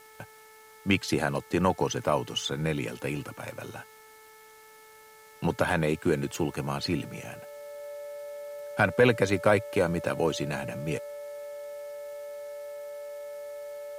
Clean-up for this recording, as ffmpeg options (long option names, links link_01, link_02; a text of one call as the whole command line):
ffmpeg -i in.wav -af "adeclick=threshold=4,bandreject=frequency=436.5:width_type=h:width=4,bandreject=frequency=873:width_type=h:width=4,bandreject=frequency=1309.5:width_type=h:width=4,bandreject=frequency=1746:width_type=h:width=4,bandreject=frequency=2182.5:width_type=h:width=4,bandreject=frequency=580:width=30,agate=range=-21dB:threshold=-45dB" out.wav